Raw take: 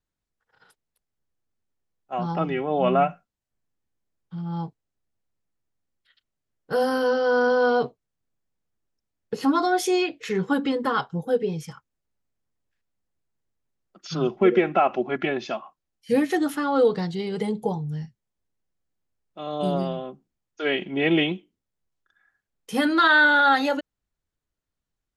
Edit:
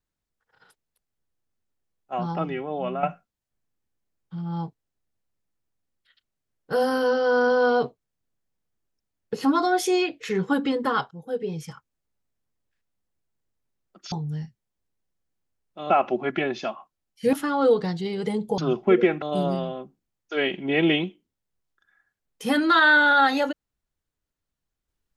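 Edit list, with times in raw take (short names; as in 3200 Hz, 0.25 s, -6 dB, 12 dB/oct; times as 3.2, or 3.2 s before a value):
2.14–3.03 fade out, to -11.5 dB
11.11–11.69 fade in, from -16 dB
14.12–14.76 swap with 17.72–19.5
16.19–16.47 cut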